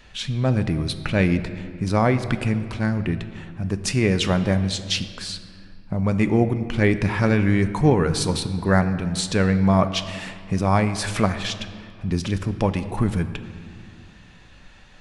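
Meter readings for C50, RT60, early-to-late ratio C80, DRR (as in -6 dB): 11.5 dB, 2.1 s, 12.5 dB, 9.5 dB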